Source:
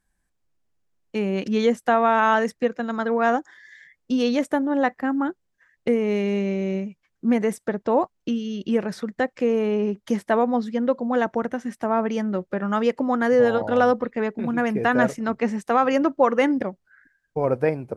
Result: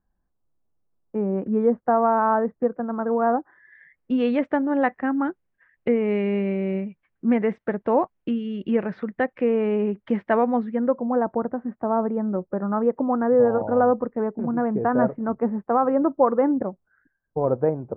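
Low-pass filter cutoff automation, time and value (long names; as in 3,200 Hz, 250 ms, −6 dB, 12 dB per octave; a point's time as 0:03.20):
low-pass filter 24 dB per octave
0:03.37 1,200 Hz
0:04.15 2,600 Hz
0:10.55 2,600 Hz
0:11.09 1,200 Hz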